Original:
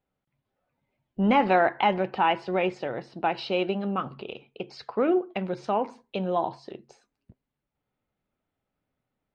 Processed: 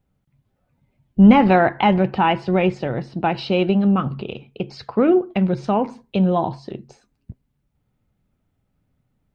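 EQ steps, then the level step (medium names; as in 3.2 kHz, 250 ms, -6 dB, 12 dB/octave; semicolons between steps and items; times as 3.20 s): tone controls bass +14 dB, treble +1 dB; +4.5 dB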